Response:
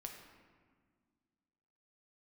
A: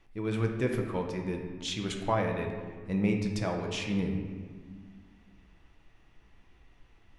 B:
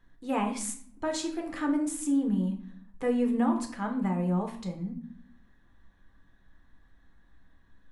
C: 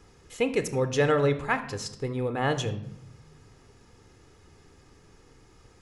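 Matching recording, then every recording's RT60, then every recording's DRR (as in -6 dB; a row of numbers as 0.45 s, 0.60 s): A; 1.7 s, 0.60 s, 0.85 s; 1.5 dB, 2.0 dB, 10.0 dB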